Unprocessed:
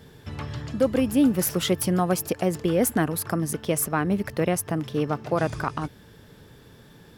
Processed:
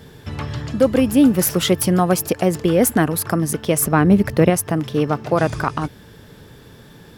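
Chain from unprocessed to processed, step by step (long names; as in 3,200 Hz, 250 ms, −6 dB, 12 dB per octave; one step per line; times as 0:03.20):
0:03.82–0:04.50: low-shelf EQ 460 Hz +6 dB
level +6.5 dB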